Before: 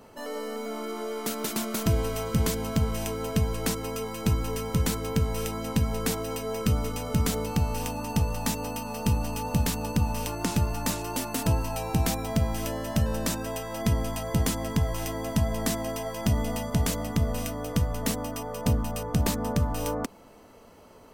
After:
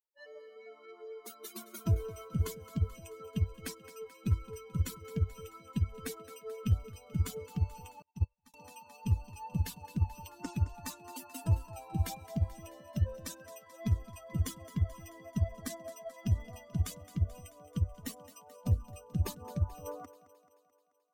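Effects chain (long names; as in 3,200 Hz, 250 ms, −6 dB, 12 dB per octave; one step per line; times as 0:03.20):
spectral dynamics exaggerated over time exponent 3
parametric band 93 Hz +11.5 dB 0.53 octaves
harmonic generator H 6 −30 dB, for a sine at −11.5 dBFS
feedback echo with a high-pass in the loop 217 ms, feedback 59%, high-pass 200 Hz, level −15 dB
0:08.02–0:08.54: expander for the loud parts 2.5 to 1, over −45 dBFS
level −5 dB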